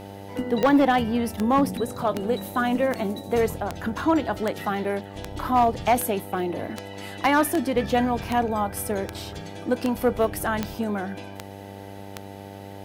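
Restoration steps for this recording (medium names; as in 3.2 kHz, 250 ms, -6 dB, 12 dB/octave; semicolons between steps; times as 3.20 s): clip repair -12 dBFS; de-click; de-hum 98.8 Hz, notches 9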